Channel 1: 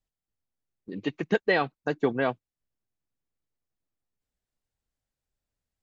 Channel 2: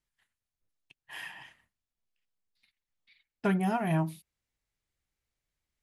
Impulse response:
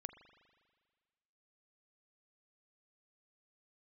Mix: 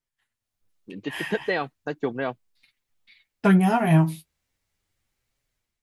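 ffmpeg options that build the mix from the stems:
-filter_complex "[0:a]volume=-13dB[a];[1:a]flanger=delay=7.2:depth=6.2:regen=35:speed=0.37:shape=triangular,volume=1.5dB[b];[a][b]amix=inputs=2:normalize=0,dynaudnorm=f=180:g=5:m=11dB"

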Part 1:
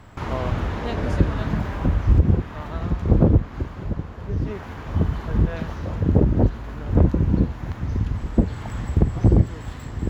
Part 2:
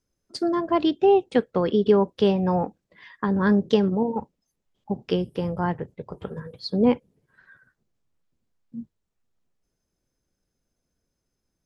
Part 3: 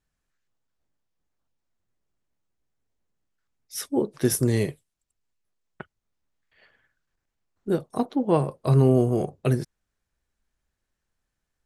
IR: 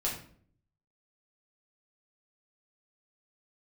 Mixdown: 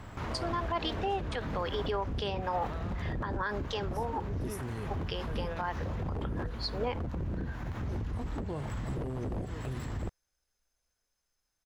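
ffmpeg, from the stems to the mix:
-filter_complex "[0:a]alimiter=limit=-14.5dB:level=0:latency=1:release=430,volume=0dB[a];[1:a]highpass=840,volume=1dB,asplit=2[b][c];[2:a]lowshelf=f=150:g=7,adelay=200,volume=-12.5dB[d];[c]apad=whole_len=522703[e];[d][e]sidechaincompress=threshold=-31dB:ratio=8:attack=16:release=991[f];[a][f]amix=inputs=2:normalize=0,aeval=exprs='0.0944*(abs(mod(val(0)/0.0944+3,4)-2)-1)':c=same,alimiter=level_in=5dB:limit=-24dB:level=0:latency=1:release=49,volume=-5dB,volume=0dB[g];[b][g]amix=inputs=2:normalize=0,alimiter=limit=-23dB:level=0:latency=1:release=75"

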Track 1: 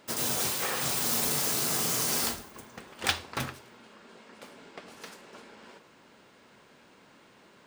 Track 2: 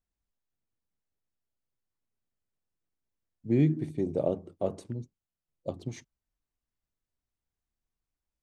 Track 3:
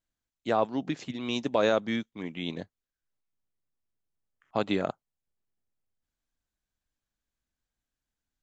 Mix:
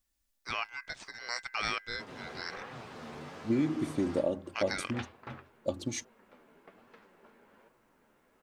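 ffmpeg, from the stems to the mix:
-filter_complex "[0:a]lowpass=2k,flanger=delay=7.6:depth=6.3:regen=43:speed=1.2:shape=triangular,adelay=1900,volume=-6dB[a];[1:a]highshelf=f=2.6k:g=11,aecho=1:1:3.5:0.58,acompressor=threshold=-27dB:ratio=6,volume=1.5dB[b];[2:a]equalizer=f=3.4k:w=0.47:g=11,aeval=exprs='val(0)*sin(2*PI*1800*n/s)':c=same,volume=-9.5dB[c];[a][b][c]amix=inputs=3:normalize=0"

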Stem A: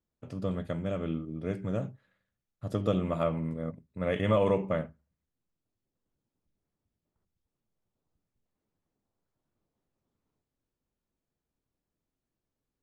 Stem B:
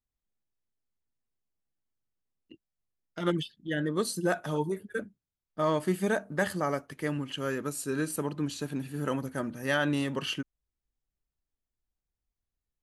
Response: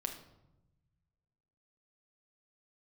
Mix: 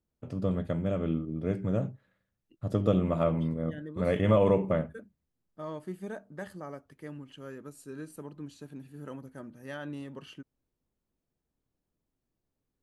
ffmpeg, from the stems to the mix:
-filter_complex "[0:a]volume=0.5dB,asplit=2[a][b];[1:a]adynamicequalizer=threshold=0.01:dfrequency=1800:dqfactor=0.7:tfrequency=1800:tqfactor=0.7:attack=5:release=100:ratio=0.375:range=2:mode=cutabove:tftype=highshelf,volume=-13dB[c];[b]apad=whole_len=565367[d];[c][d]sidechaincompress=threshold=-31dB:ratio=8:attack=16:release=211[e];[a][e]amix=inputs=2:normalize=0,tiltshelf=f=970:g=3"

